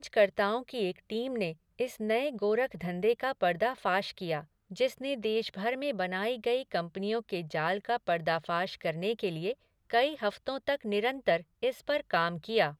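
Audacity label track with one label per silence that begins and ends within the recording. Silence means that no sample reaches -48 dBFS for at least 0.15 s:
1.540000	1.790000	silence
4.440000	4.710000	silence
9.540000	9.900000	silence
11.420000	11.620000	silence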